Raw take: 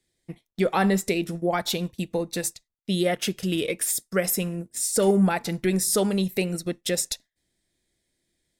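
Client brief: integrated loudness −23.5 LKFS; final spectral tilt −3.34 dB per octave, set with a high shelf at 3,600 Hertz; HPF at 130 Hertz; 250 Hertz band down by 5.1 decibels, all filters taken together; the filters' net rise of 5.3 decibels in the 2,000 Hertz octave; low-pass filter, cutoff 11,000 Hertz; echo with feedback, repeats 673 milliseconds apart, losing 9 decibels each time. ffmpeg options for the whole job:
ffmpeg -i in.wav -af "highpass=130,lowpass=11000,equalizer=frequency=250:width_type=o:gain=-7.5,equalizer=frequency=2000:width_type=o:gain=5.5,highshelf=frequency=3600:gain=4,aecho=1:1:673|1346|2019|2692:0.355|0.124|0.0435|0.0152,volume=1.5dB" out.wav

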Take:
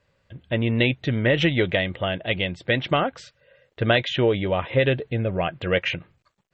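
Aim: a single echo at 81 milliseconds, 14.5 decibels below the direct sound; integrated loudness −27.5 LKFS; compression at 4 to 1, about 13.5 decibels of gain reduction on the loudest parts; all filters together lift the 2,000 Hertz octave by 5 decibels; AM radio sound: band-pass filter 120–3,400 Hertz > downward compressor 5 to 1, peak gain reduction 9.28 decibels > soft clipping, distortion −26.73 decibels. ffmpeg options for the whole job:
ffmpeg -i in.wav -af "equalizer=frequency=2000:width_type=o:gain=6.5,acompressor=threshold=-30dB:ratio=4,highpass=120,lowpass=3400,aecho=1:1:81:0.188,acompressor=threshold=-35dB:ratio=5,asoftclip=threshold=-22.5dB,volume=12.5dB" out.wav

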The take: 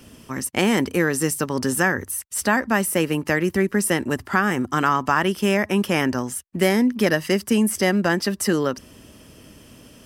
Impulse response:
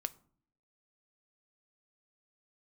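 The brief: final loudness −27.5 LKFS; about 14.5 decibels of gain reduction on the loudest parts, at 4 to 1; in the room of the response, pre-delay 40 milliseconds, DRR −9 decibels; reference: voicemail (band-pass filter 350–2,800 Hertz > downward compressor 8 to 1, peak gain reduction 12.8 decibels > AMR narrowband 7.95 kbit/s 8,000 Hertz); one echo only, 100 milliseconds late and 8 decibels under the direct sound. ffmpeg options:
-filter_complex "[0:a]acompressor=threshold=-33dB:ratio=4,aecho=1:1:100:0.398,asplit=2[link_01][link_02];[1:a]atrim=start_sample=2205,adelay=40[link_03];[link_02][link_03]afir=irnorm=-1:irlink=0,volume=9.5dB[link_04];[link_01][link_04]amix=inputs=2:normalize=0,highpass=350,lowpass=2800,acompressor=threshold=-33dB:ratio=8,volume=11.5dB" -ar 8000 -c:a libopencore_amrnb -b:a 7950

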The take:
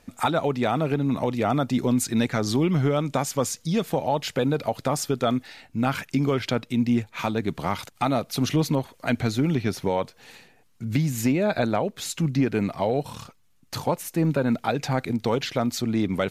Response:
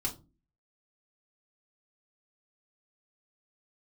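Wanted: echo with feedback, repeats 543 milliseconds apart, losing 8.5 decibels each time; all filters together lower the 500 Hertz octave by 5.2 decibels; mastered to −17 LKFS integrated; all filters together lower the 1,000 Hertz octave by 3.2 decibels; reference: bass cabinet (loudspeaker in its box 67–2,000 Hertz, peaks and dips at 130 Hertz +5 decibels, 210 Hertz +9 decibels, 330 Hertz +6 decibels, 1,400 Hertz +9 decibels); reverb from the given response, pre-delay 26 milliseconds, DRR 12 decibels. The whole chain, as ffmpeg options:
-filter_complex "[0:a]equalizer=frequency=500:width_type=o:gain=-7.5,equalizer=frequency=1000:width_type=o:gain=-6,aecho=1:1:543|1086|1629|2172:0.376|0.143|0.0543|0.0206,asplit=2[link_01][link_02];[1:a]atrim=start_sample=2205,adelay=26[link_03];[link_02][link_03]afir=irnorm=-1:irlink=0,volume=-14.5dB[link_04];[link_01][link_04]amix=inputs=2:normalize=0,highpass=frequency=67:width=0.5412,highpass=frequency=67:width=1.3066,equalizer=frequency=130:width_type=q:width=4:gain=5,equalizer=frequency=210:width_type=q:width=4:gain=9,equalizer=frequency=330:width_type=q:width=4:gain=6,equalizer=frequency=1400:width_type=q:width=4:gain=9,lowpass=frequency=2000:width=0.5412,lowpass=frequency=2000:width=1.3066,volume=5dB"

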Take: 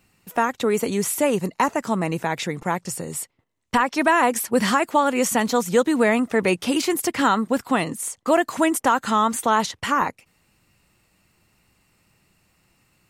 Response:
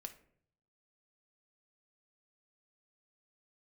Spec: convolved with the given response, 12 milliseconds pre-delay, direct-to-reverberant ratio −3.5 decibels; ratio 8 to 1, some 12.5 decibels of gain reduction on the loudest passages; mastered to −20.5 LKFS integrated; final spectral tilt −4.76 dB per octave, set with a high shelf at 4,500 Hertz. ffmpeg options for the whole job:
-filter_complex "[0:a]highshelf=frequency=4500:gain=-7.5,acompressor=threshold=-27dB:ratio=8,asplit=2[link_01][link_02];[1:a]atrim=start_sample=2205,adelay=12[link_03];[link_02][link_03]afir=irnorm=-1:irlink=0,volume=8dB[link_04];[link_01][link_04]amix=inputs=2:normalize=0,volume=6dB"

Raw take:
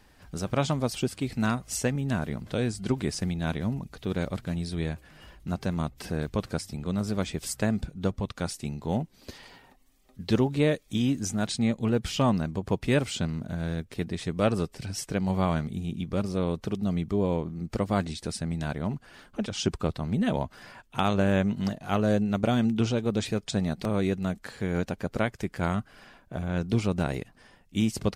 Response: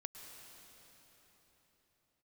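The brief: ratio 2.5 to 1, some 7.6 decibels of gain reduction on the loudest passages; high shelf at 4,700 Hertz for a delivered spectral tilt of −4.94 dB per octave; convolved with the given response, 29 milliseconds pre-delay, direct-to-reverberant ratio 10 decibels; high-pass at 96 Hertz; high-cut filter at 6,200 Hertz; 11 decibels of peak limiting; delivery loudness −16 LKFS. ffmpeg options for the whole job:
-filter_complex "[0:a]highpass=96,lowpass=6200,highshelf=frequency=4700:gain=9,acompressor=threshold=-30dB:ratio=2.5,alimiter=limit=-22.5dB:level=0:latency=1,asplit=2[link_01][link_02];[1:a]atrim=start_sample=2205,adelay=29[link_03];[link_02][link_03]afir=irnorm=-1:irlink=0,volume=-6.5dB[link_04];[link_01][link_04]amix=inputs=2:normalize=0,volume=19.5dB"

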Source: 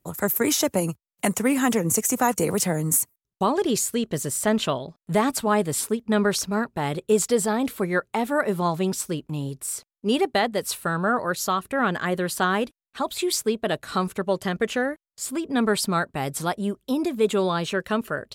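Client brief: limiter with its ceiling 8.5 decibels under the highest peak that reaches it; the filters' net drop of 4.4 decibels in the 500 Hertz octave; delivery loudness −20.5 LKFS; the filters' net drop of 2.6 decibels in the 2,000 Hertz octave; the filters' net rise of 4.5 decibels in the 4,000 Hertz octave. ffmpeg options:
ffmpeg -i in.wav -af "equalizer=frequency=500:width_type=o:gain=-5.5,equalizer=frequency=2000:width_type=o:gain=-4.5,equalizer=frequency=4000:width_type=o:gain=7,volume=6.5dB,alimiter=limit=-9.5dB:level=0:latency=1" out.wav

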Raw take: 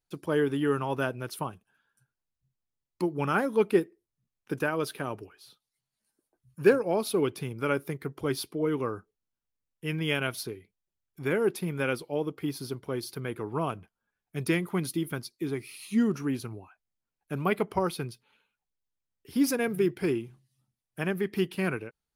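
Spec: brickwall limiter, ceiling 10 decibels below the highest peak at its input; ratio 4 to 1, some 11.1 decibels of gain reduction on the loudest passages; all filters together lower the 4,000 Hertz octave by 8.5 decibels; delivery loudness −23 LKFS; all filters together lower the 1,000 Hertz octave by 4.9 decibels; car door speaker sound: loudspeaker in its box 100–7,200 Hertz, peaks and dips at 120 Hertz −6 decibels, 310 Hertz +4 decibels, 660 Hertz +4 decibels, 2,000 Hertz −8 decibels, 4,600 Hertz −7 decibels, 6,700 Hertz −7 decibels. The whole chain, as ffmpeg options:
ffmpeg -i in.wav -af "equalizer=frequency=1000:width_type=o:gain=-7,equalizer=frequency=4000:width_type=o:gain=-8,acompressor=threshold=-29dB:ratio=4,alimiter=level_in=5.5dB:limit=-24dB:level=0:latency=1,volume=-5.5dB,highpass=100,equalizer=frequency=120:width_type=q:width=4:gain=-6,equalizer=frequency=310:width_type=q:width=4:gain=4,equalizer=frequency=660:width_type=q:width=4:gain=4,equalizer=frequency=2000:width_type=q:width=4:gain=-8,equalizer=frequency=4600:width_type=q:width=4:gain=-7,equalizer=frequency=6700:width_type=q:width=4:gain=-7,lowpass=frequency=7200:width=0.5412,lowpass=frequency=7200:width=1.3066,volume=16.5dB" out.wav

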